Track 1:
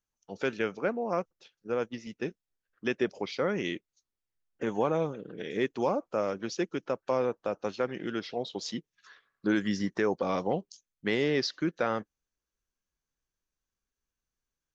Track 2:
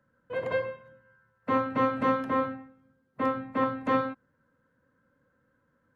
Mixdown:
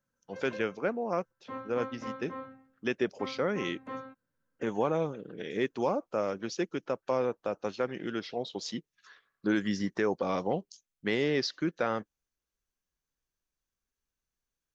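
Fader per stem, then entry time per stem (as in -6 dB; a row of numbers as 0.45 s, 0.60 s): -1.0 dB, -14.5 dB; 0.00 s, 0.00 s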